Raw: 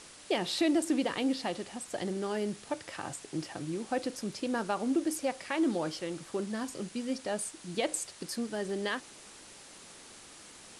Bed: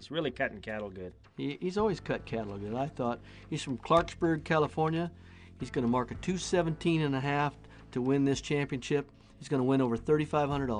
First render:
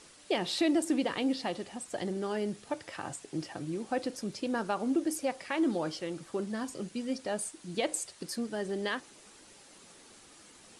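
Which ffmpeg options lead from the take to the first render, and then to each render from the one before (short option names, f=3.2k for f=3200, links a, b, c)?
-af "afftdn=nr=6:nf=-52"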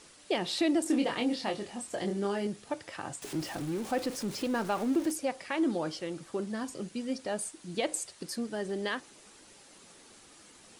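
-filter_complex "[0:a]asettb=1/sr,asplit=3[a][b][c];[a]atrim=end=0.834[d];[b]atrim=start=0.83:end=2.47,asetpts=PTS-STARTPTS,afade=t=in:d=0.004:c=qsin,afade=t=out:st=1.636:d=0.004:c=qsin,asplit=2[e][f];[f]adelay=25,volume=-4dB[g];[e][g]amix=inputs=2:normalize=0,atrim=end_sample=72324[h];[c]atrim=start=2.466[i];[d][h]acrossfade=d=0.004:c1=hsin:c2=qsin[j];[j][i]acrossfade=d=0.004:c1=qsin:c2=hsin,asettb=1/sr,asplit=3[k][l][m];[k]atrim=end=3.224[n];[l]atrim=start=3.22:end=5.12,asetpts=PTS-STARTPTS,afade=t=in:d=0.004:c=qsin,afade=t=out:st=1.896:d=0.004:c=qsin,aeval=exprs='val(0)+0.5*0.0112*sgn(val(0))':c=same[o];[m]atrim=start=5.116[p];[n][o]acrossfade=d=0.004:c1=hsin:c2=qsin[q];[q][p]acrossfade=d=0.004:c1=qsin:c2=hsin"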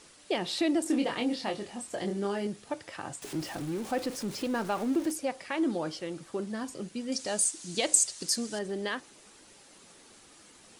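-filter_complex "[0:a]asettb=1/sr,asplit=3[a][b][c];[a]atrim=end=7.124[d];[b]atrim=start=7.12:end=8.59,asetpts=PTS-STARTPTS,afade=t=in:d=0.004:c=qsin,afade=t=out:st=1.466:d=0.004:c=qsin,equalizer=f=6.7k:w=0.71:g=14.5[e];[c]atrim=start=8.586[f];[d][e]acrossfade=d=0.004:c1=hsin:c2=qsin[g];[g][f]acrossfade=d=0.004:c1=qsin:c2=hsin"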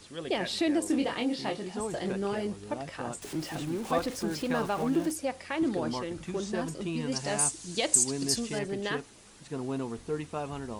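-filter_complex "[1:a]volume=-6.5dB[a];[0:a][a]amix=inputs=2:normalize=0"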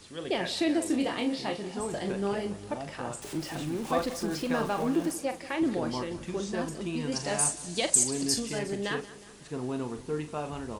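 -filter_complex "[0:a]asplit=2[a][b];[b]adelay=40,volume=-9.5dB[c];[a][c]amix=inputs=2:normalize=0,aecho=1:1:181|362|543|724|905:0.126|0.073|0.0424|0.0246|0.0142"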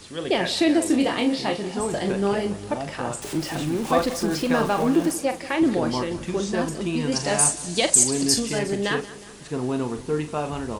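-af "volume=7.5dB,alimiter=limit=-2dB:level=0:latency=1"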